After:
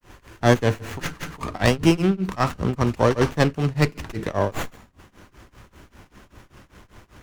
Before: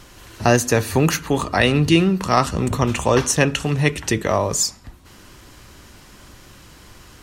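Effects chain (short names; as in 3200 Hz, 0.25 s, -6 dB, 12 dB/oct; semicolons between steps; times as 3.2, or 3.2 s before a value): grains 0.228 s, grains 5.1/s, pitch spread up and down by 0 st; running maximum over 9 samples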